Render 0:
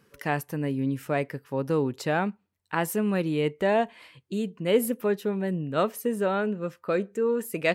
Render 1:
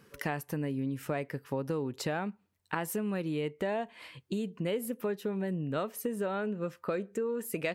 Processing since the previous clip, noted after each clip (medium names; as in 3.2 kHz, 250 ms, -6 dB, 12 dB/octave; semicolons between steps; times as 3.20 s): compression 6:1, threshold -33 dBFS, peak gain reduction 16 dB; trim +2.5 dB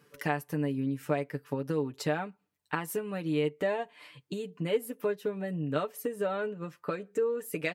bass shelf 75 Hz -11.5 dB; comb 6.8 ms, depth 63%; upward expansion 1.5:1, over -39 dBFS; trim +3 dB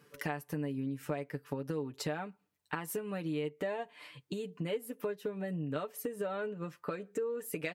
compression 2.5:1, threshold -35 dBFS, peak gain reduction 9 dB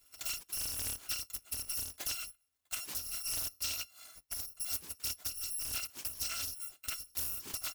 bit-reversed sample order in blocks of 256 samples; loudspeaker Doppler distortion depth 0.75 ms